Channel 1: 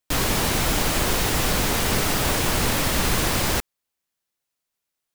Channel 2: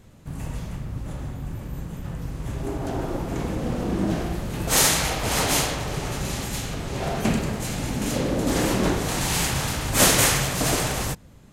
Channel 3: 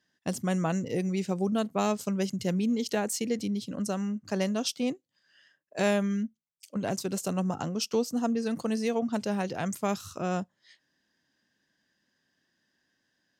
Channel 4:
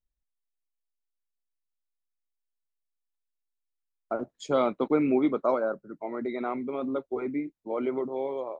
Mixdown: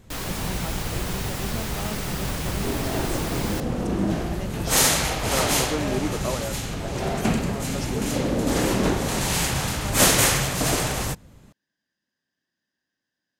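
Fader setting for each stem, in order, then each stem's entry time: -9.0, 0.0, -8.0, -4.5 dB; 0.00, 0.00, 0.00, 0.80 s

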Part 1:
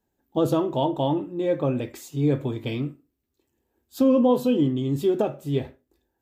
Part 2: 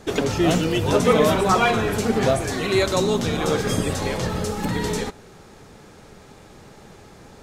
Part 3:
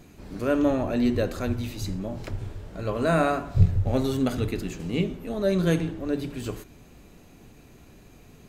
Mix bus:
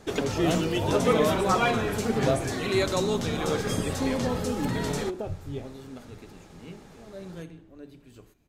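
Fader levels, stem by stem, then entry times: -11.0, -5.5, -18.0 dB; 0.00, 0.00, 1.70 s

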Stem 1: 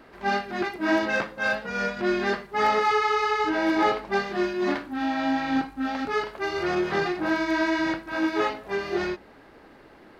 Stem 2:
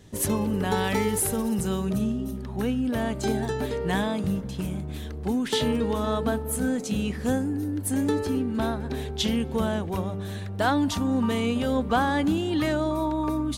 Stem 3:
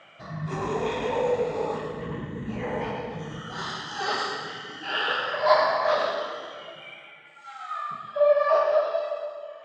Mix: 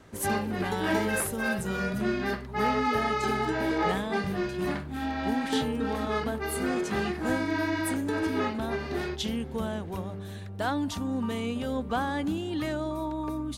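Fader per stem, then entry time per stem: -5.5 dB, -6.0 dB, off; 0.00 s, 0.00 s, off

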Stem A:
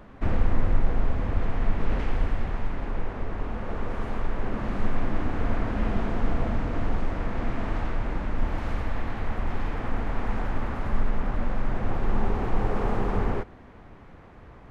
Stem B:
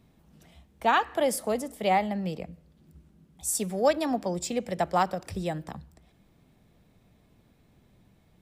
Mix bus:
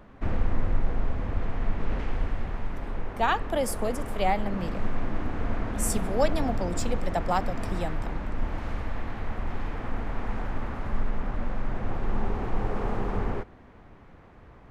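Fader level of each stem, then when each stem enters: -3.0, -2.0 dB; 0.00, 2.35 s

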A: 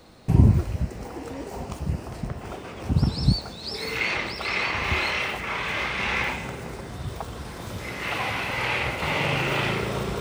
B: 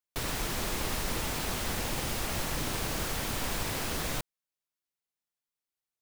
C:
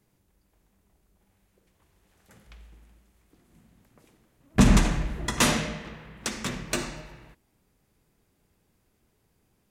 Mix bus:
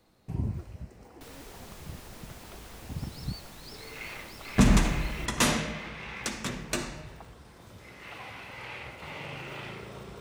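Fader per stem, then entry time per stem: -15.5, -15.5, -2.5 dB; 0.00, 1.05, 0.00 s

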